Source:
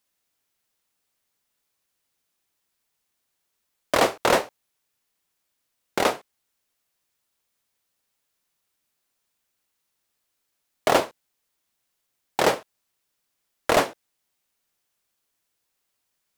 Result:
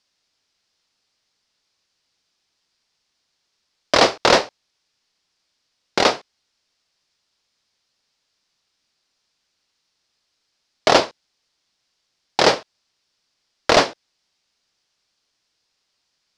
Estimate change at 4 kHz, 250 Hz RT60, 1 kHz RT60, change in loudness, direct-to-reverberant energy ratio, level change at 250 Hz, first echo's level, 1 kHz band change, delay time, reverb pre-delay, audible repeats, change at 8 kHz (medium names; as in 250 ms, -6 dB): +10.0 dB, no reverb, no reverb, +5.5 dB, no reverb, +4.5 dB, no echo, +5.0 dB, no echo, no reverb, no echo, +4.5 dB